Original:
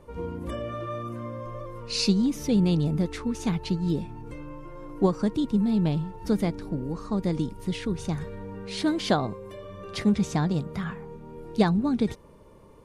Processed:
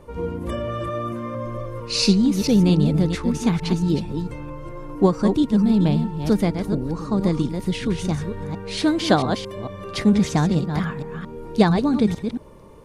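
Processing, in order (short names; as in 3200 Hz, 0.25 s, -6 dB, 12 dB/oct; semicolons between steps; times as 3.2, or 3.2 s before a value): reverse delay 0.225 s, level -7 dB; gain +5.5 dB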